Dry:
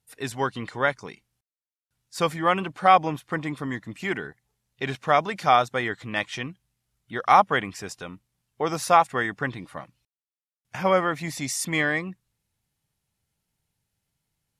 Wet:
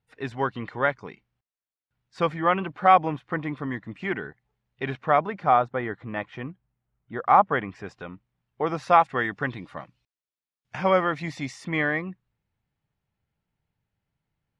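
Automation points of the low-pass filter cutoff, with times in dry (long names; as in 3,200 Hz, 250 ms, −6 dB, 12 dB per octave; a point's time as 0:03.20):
0:04.88 2,500 Hz
0:05.44 1,400 Hz
0:07.27 1,400 Hz
0:07.94 2,300 Hz
0:08.68 2,300 Hz
0:09.43 4,400 Hz
0:11.19 4,400 Hz
0:11.66 2,300 Hz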